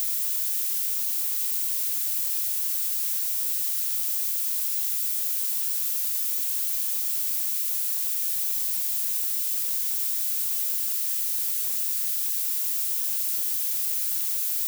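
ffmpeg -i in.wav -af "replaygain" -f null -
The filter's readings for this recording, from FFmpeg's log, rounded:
track_gain = +22.5 dB
track_peak = 0.178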